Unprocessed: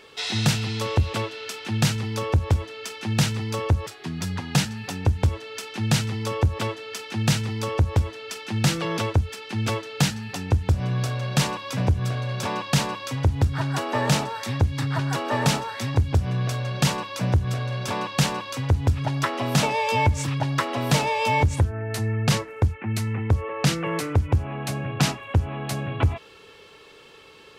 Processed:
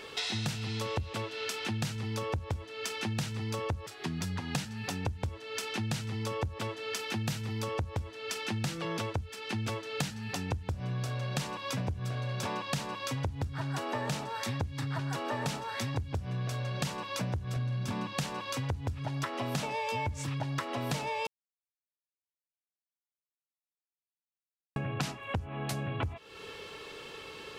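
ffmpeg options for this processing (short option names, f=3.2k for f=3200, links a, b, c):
-filter_complex "[0:a]asettb=1/sr,asplit=3[a][b][c];[a]atrim=end=7.004[d];[b]atrim=start=7:end=7.63,asetpts=PTS-STARTPTS,afade=t=in:d=0.004:c=qsin,afade=t=out:st=0.626:d=0.004:c=qsin,equalizer=f=13k:w=2.9:g=7.5[e];[c]atrim=start=7.626[f];[d][e]acrossfade=d=0.004:c1=hsin:c2=qsin[g];[g][f]acrossfade=d=0.004:c1=qsin:c2=hsin,asettb=1/sr,asplit=3[h][i][j];[h]atrim=end=17.564[k];[i]atrim=start=17.56:end=18.13,asetpts=PTS-STARTPTS,afade=t=in:d=0.004:c=qsin,afade=t=out:st=0.566:d=0.004:c=qsin,lowshelf=f=330:t=q:w=1.5:g=8[l];[j]atrim=start=18.126[m];[k][l]acrossfade=d=0.004:c1=hsin:c2=qsin[n];[n][m]acrossfade=d=0.004:c1=qsin:c2=hsin,asplit=3[o][p][q];[o]atrim=end=21.27,asetpts=PTS-STARTPTS,afade=t=out:st=21.266:d=0.004:c=hsin[r];[p]atrim=start=21.27:end=24.76,asetpts=PTS-STARTPTS,volume=0[s];[q]atrim=start=24.76,asetpts=PTS-STARTPTS,afade=t=in:d=0.004:c=hsin[t];[r][s][t]concat=n=3:v=0:a=1,acompressor=threshold=-36dB:ratio=6,volume=3.5dB"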